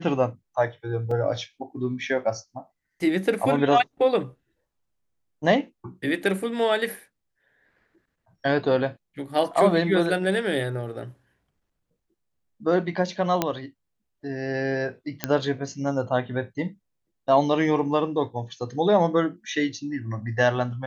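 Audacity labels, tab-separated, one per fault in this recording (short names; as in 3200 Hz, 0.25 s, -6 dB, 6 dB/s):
1.110000	1.110000	gap 3.8 ms
13.420000	13.420000	pop -7 dBFS
15.240000	15.240000	pop -7 dBFS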